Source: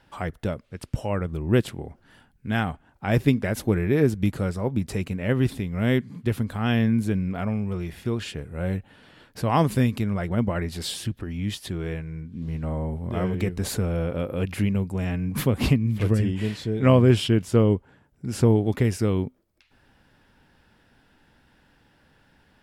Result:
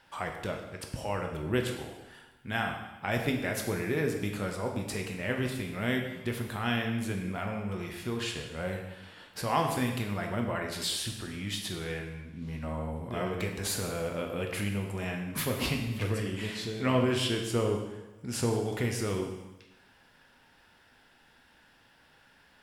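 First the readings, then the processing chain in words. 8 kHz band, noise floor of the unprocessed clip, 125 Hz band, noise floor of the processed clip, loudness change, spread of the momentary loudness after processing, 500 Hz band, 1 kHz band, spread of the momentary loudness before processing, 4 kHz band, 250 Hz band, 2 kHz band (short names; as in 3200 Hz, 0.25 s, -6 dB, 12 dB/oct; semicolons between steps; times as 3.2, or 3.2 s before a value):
+0.5 dB, -61 dBFS, -11.0 dB, -62 dBFS, -7.5 dB, 9 LU, -6.5 dB, -3.0 dB, 11 LU, -0.5 dB, -9.5 dB, -1.0 dB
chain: low shelf 490 Hz -11.5 dB; in parallel at +1 dB: compressor, threshold -35 dBFS, peak gain reduction 15 dB; on the sum: plate-style reverb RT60 1.1 s, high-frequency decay 0.95×, DRR 2 dB; gain -5.5 dB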